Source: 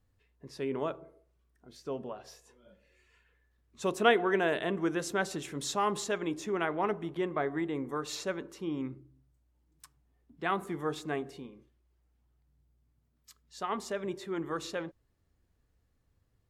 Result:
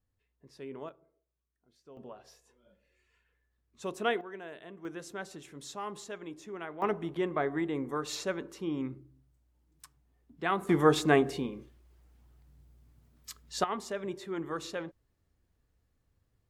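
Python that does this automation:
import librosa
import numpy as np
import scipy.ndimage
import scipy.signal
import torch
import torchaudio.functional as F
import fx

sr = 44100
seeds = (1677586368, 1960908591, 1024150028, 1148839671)

y = fx.gain(x, sr, db=fx.steps((0.0, -9.0), (0.89, -16.0), (1.97, -6.0), (4.21, -16.0), (4.85, -9.5), (6.82, 1.0), (10.69, 11.0), (13.64, -1.0)))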